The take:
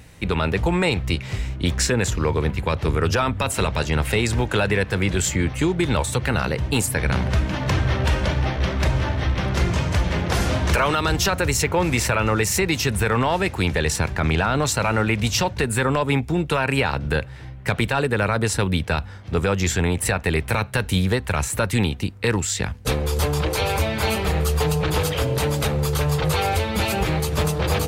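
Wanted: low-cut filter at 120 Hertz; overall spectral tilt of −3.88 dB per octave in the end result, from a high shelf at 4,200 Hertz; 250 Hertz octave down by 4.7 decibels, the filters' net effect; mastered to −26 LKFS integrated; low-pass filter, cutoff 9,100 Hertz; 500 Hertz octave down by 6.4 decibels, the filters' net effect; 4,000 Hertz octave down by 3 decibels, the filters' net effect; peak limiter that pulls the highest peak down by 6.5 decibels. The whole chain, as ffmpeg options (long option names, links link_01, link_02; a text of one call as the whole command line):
ffmpeg -i in.wav -af "highpass=120,lowpass=9100,equalizer=frequency=250:width_type=o:gain=-4.5,equalizer=frequency=500:width_type=o:gain=-6.5,equalizer=frequency=4000:width_type=o:gain=-7,highshelf=frequency=4200:gain=5.5,volume=0.5dB,alimiter=limit=-15dB:level=0:latency=1" out.wav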